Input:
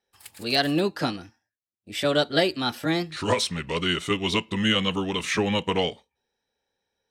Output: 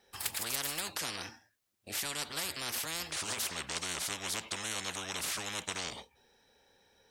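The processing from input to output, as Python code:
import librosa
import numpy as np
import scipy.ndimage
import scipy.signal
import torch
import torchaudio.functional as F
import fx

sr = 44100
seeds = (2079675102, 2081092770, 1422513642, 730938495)

y = fx.spectral_comp(x, sr, ratio=10.0)
y = y * 10.0 ** (-7.5 / 20.0)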